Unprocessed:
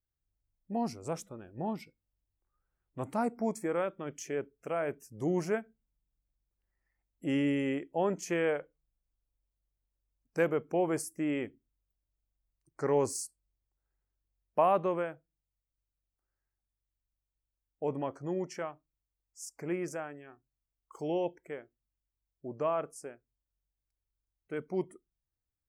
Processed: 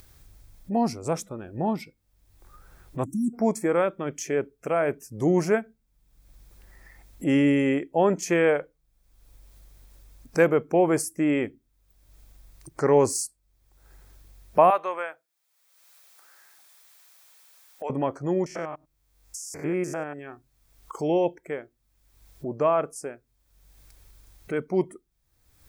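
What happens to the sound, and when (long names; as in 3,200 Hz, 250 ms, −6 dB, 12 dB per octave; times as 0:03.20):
0:03.05–0:03.34: time-frequency box erased 380–5,500 Hz
0:14.70–0:17.90: high-pass filter 870 Hz
0:18.46–0:20.19: spectrum averaged block by block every 100 ms
whole clip: notch filter 2,900 Hz, Q 14; upward compression, threshold −41 dBFS; level +9 dB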